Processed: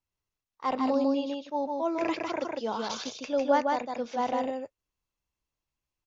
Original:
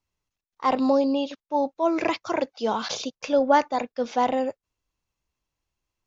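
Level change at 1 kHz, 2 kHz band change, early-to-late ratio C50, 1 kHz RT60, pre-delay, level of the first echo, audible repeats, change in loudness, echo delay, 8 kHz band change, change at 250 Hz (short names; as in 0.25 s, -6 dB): -5.5 dB, -5.0 dB, none, none, none, -3.0 dB, 1, -5.0 dB, 0.153 s, n/a, -4.5 dB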